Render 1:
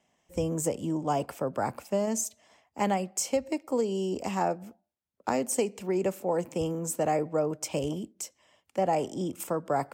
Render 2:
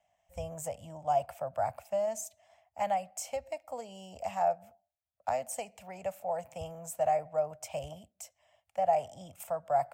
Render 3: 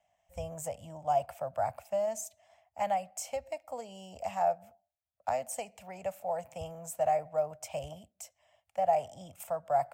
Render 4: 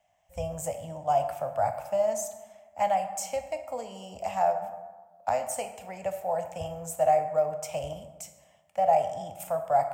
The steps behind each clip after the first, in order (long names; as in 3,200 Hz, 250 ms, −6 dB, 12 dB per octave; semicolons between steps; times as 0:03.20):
drawn EQ curve 100 Hz 0 dB, 370 Hz −29 dB, 670 Hz +7 dB, 1,000 Hz −7 dB, 2,400 Hz −4 dB, 4,900 Hz −9 dB, 14,000 Hz −4 dB; level −2 dB
floating-point word with a short mantissa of 6 bits
dense smooth reverb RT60 1.3 s, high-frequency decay 0.5×, DRR 6.5 dB; level +4 dB